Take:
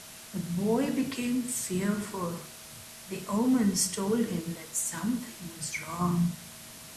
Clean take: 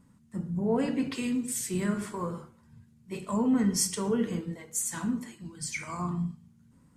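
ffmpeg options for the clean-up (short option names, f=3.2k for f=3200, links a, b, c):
-af "adeclick=t=4,bandreject=f=640:w=30,afwtdn=0.0056,asetnsamples=n=441:p=0,asendcmd='6.01 volume volume -4.5dB',volume=0dB"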